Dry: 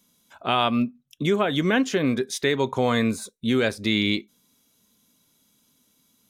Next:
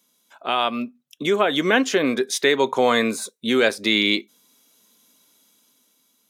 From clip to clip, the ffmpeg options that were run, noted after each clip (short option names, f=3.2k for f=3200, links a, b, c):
-af "highpass=320,dynaudnorm=f=260:g=9:m=8dB"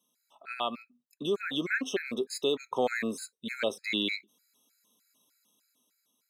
-af "afftfilt=real='re*gt(sin(2*PI*3.3*pts/sr)*(1-2*mod(floor(b*sr/1024/1300),2)),0)':imag='im*gt(sin(2*PI*3.3*pts/sr)*(1-2*mod(floor(b*sr/1024/1300),2)),0)':win_size=1024:overlap=0.75,volume=-8.5dB"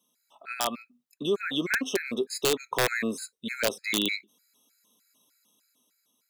-af "aeval=exprs='(mod(8.91*val(0)+1,2)-1)/8.91':c=same,volume=3dB"